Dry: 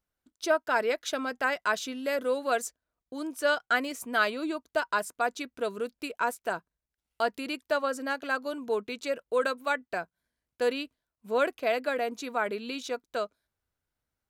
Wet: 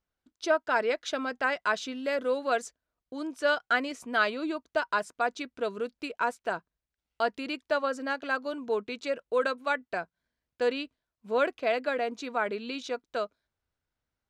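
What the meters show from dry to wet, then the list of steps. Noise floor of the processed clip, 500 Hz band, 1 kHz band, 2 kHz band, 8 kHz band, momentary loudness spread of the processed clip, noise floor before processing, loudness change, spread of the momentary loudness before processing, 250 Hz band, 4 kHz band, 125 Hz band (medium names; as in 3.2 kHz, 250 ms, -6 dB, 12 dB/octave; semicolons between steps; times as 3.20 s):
under -85 dBFS, 0.0 dB, 0.0 dB, 0.0 dB, -5.5 dB, 9 LU, under -85 dBFS, 0.0 dB, 9 LU, 0.0 dB, -0.5 dB, no reading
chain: low-pass 5.8 kHz 12 dB/octave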